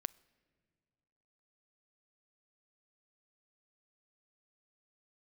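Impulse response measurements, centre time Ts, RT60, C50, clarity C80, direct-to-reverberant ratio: 2 ms, non-exponential decay, 24.0 dB, 25.5 dB, 22.5 dB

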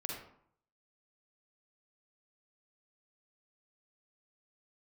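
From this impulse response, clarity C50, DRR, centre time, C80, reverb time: 0.5 dB, −1.5 dB, 49 ms, 5.5 dB, 0.65 s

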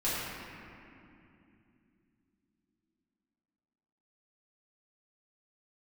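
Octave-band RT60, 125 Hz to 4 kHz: 3.9, 4.5, 3.1, 2.5, 2.5, 1.7 seconds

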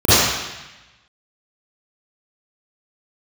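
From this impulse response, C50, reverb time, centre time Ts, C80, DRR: −12.0 dB, 1.0 s, 132 ms, −3.5 dB, −16.5 dB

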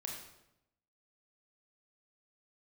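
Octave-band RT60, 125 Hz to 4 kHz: 1.1, 1.0, 0.90, 0.80, 0.75, 0.65 seconds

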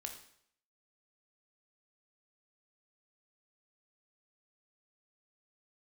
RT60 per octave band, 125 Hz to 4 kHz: 0.65, 0.65, 0.65, 0.65, 0.65, 0.60 seconds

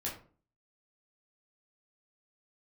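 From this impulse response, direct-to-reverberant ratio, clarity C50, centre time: −5.0 dB, 7.5 dB, 28 ms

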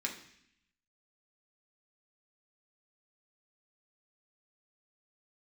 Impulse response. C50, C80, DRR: 9.0 dB, 12.0 dB, −1.0 dB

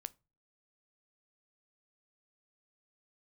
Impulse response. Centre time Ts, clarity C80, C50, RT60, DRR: 1 ms, 33.0 dB, 25.5 dB, 0.30 s, 15.5 dB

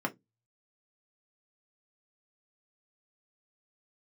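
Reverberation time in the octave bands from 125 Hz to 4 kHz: 0.35, 0.25, 0.20, 0.15, 0.10, 0.15 seconds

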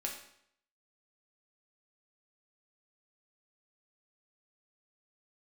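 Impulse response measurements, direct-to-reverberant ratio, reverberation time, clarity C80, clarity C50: −1.5 dB, 0.70 s, 9.0 dB, 6.0 dB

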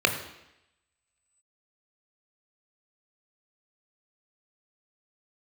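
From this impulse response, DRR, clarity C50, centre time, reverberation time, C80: 5.0 dB, 9.0 dB, 18 ms, 0.85 s, 11.0 dB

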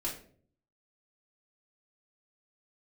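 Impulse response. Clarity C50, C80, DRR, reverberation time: 7.0 dB, 12.0 dB, −6.0 dB, 0.50 s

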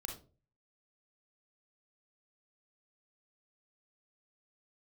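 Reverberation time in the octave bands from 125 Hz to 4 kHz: 0.60, 0.45, 0.45, 0.30, 0.25, 0.25 seconds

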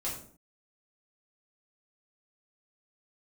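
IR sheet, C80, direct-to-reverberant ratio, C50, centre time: 9.5 dB, −7.0 dB, 5.5 dB, 34 ms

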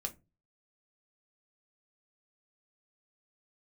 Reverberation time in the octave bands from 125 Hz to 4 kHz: 0.50, 0.40, 0.30, 0.20, 0.20, 0.15 seconds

